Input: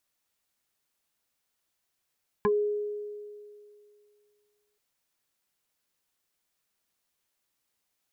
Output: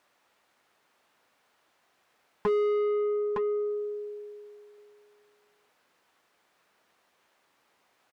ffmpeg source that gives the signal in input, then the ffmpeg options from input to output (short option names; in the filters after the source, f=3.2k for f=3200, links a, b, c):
-f lavfi -i "aevalsrc='0.1*pow(10,-3*t/2.38)*sin(2*PI*416*t+1.9*pow(10,-3*t/0.1)*sin(2*PI*1.5*416*t))':d=2.33:s=44100"
-filter_complex "[0:a]aecho=1:1:912:0.237,asplit=2[a][b];[b]highpass=f=720:p=1,volume=30dB,asoftclip=type=tanh:threshold=-20dB[c];[a][c]amix=inputs=2:normalize=0,lowpass=f=2.1k:p=1,volume=-6dB,highshelf=f=2.2k:g=-11"